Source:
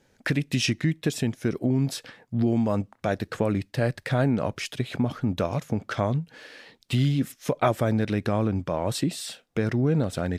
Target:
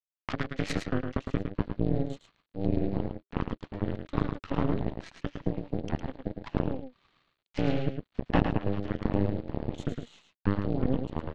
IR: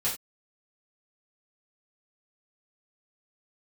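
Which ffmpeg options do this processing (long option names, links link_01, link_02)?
-af "aresample=11025,aeval=exprs='val(0)*gte(abs(val(0)),0.0075)':channel_layout=same,aresample=44100,asetrate=40352,aresample=44100,afreqshift=-400,aeval=exprs='0.355*(cos(1*acos(clip(val(0)/0.355,-1,1)))-cos(1*PI/2))+0.112*(cos(2*acos(clip(val(0)/0.355,-1,1)))-cos(2*PI/2))+0.112*(cos(3*acos(clip(val(0)/0.355,-1,1)))-cos(3*PI/2))':channel_layout=same,asoftclip=type=tanh:threshold=-15dB,aecho=1:1:109:0.473,volume=5dB"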